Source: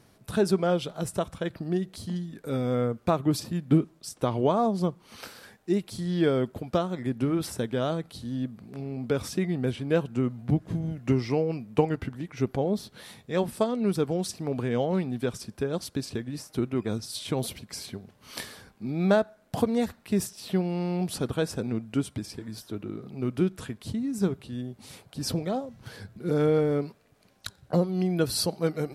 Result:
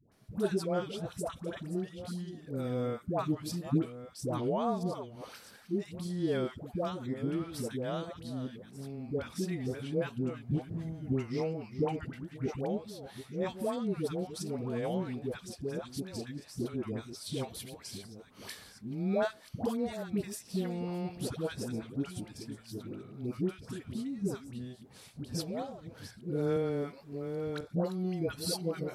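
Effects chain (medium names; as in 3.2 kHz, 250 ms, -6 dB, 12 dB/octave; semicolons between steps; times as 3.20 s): chunks repeated in reverse 674 ms, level -12 dB; phase dispersion highs, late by 119 ms, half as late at 690 Hz; 26.56–27.61 s: three bands compressed up and down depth 70%; trim -7.5 dB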